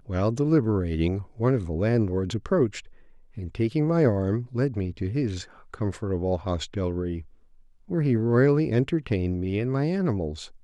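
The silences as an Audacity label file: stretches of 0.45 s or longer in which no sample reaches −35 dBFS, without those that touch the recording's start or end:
2.800000	3.380000	silence
7.220000	7.900000	silence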